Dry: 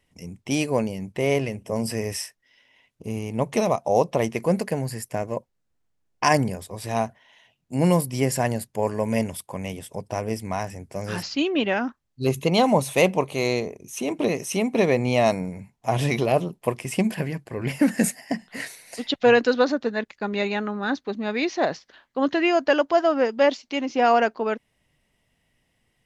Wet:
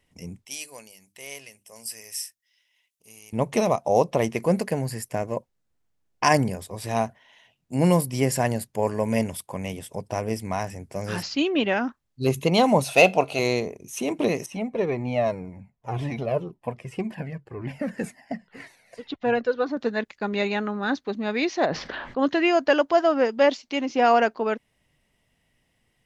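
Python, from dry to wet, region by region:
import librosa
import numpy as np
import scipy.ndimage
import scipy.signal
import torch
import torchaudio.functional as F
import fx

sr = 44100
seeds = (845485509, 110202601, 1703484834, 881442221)

y = fx.chain(x, sr, fx.pre_emphasis(coefficient=0.97),
    fx.hum_notches(base_hz=50, count=7), at=(0.45, 3.33))
y = fx.chain(y, sr, fx.peak_eq(hz=4700.0, db=9.5, octaves=0.74),
    fx.comb_fb(f0_hz=92.0, decay_s=0.24, harmonics='odd', damping=0.0, mix_pct=40),
    fx.small_body(hz=(700.0, 1400.0, 2600.0), ring_ms=20, db=14), at=(12.84, 13.39))
y = fx.chain(y, sr, fx.lowpass(hz=1500.0, slope=6),
    fx.comb_cascade(direction='falling', hz=1.9), at=(14.46, 19.77))
y = fx.chain(y, sr, fx.spacing_loss(db_at_10k=28),
    fx.env_flatten(amount_pct=70), at=(21.66, 22.19))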